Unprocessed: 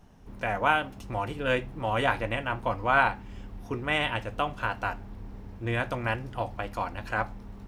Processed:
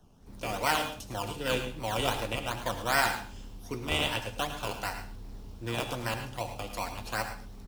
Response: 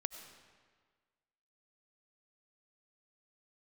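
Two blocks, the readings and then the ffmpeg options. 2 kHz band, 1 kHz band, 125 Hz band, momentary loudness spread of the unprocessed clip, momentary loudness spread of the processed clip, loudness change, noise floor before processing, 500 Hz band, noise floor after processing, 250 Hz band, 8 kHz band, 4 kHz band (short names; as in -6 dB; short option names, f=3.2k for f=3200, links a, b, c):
-4.5 dB, -4.5 dB, -4.0 dB, 12 LU, 13 LU, -3.0 dB, -45 dBFS, -3.5 dB, -47 dBFS, -3.0 dB, n/a, +3.5 dB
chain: -filter_complex "[0:a]acrossover=split=120|610|3200[a][b][c][d];[a]asoftclip=type=hard:threshold=-40dB[e];[c]acrusher=samples=18:mix=1:aa=0.000001:lfo=1:lforange=10.8:lforate=2.6[f];[d]dynaudnorm=f=200:g=3:m=12dB[g];[e][b][f][g]amix=inputs=4:normalize=0,aecho=1:1:108:0.251[h];[1:a]atrim=start_sample=2205,afade=t=out:st=0.24:d=0.01,atrim=end_sample=11025,asetrate=57330,aresample=44100[i];[h][i]afir=irnorm=-1:irlink=0"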